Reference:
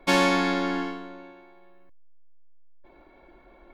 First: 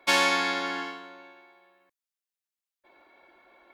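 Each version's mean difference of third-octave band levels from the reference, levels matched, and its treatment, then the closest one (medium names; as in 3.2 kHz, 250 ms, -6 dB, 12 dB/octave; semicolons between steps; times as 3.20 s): 4.0 dB: high-pass 1.3 kHz 6 dB/octave; trim +3 dB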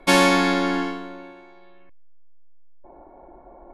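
1.5 dB: low-pass sweep 11 kHz -> 810 Hz, 1.28–2.37 s; trim +4.5 dB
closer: second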